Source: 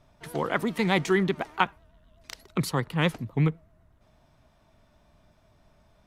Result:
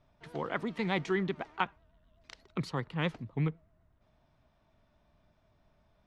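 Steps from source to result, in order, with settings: low-pass 4.8 kHz 12 dB/octave; trim -7.5 dB

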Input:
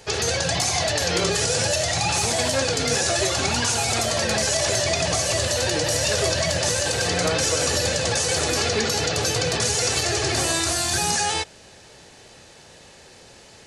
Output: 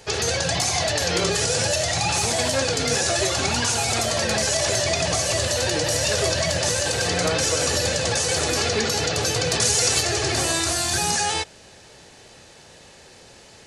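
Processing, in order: 9.51–10.02 s: treble shelf 4.8 kHz +5.5 dB

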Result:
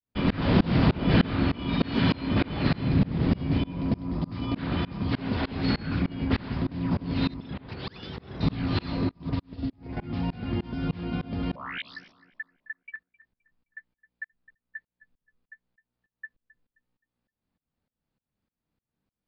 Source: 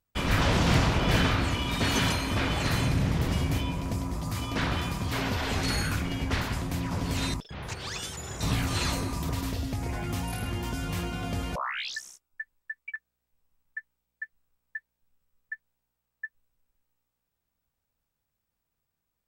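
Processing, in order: steep low-pass 5 kHz 96 dB/octave; peaking EQ 230 Hz +11 dB 2 oct; tremolo saw up 3.3 Hz, depth 100%; tape echo 262 ms, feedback 43%, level -16 dB, low-pass 1.8 kHz; 9.11–9.97 s: upward expansion 2.5:1, over -40 dBFS

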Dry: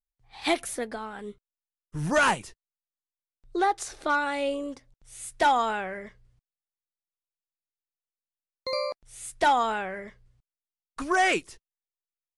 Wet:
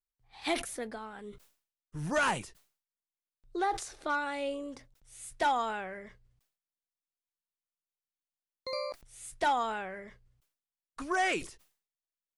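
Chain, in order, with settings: decay stretcher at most 130 dB/s; trim -6.5 dB

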